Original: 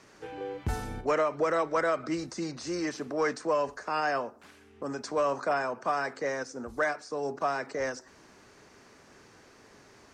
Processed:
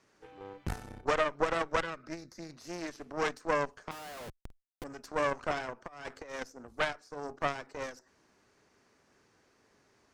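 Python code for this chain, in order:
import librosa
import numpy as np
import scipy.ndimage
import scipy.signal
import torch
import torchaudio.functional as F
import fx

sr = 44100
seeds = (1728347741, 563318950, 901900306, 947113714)

y = fx.fixed_phaser(x, sr, hz=3000.0, stages=6, at=(1.82, 2.5))
y = fx.schmitt(y, sr, flips_db=-43.0, at=(3.91, 4.84))
y = fx.over_compress(y, sr, threshold_db=-33.0, ratio=-0.5, at=(5.86, 6.48), fade=0.02)
y = fx.cheby_harmonics(y, sr, harmonics=(2, 3), levels_db=(-8, -12), full_scale_db=-17.5)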